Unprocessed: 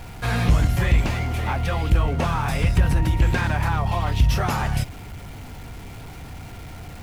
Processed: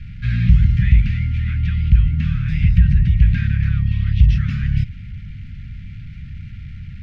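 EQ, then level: inverse Chebyshev band-stop 410–890 Hz, stop band 60 dB; distance through air 230 m; treble shelf 2.3 kHz -10 dB; +6.0 dB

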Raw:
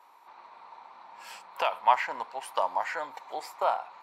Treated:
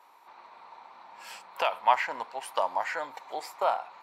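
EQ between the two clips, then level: peaking EQ 1 kHz -2.5 dB; +1.5 dB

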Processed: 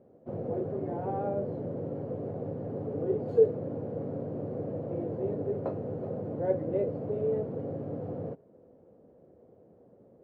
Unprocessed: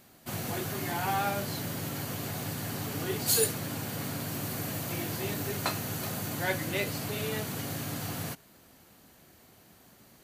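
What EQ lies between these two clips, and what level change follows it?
high-pass 71 Hz; resonant low-pass 500 Hz, resonance Q 4.9; -2.0 dB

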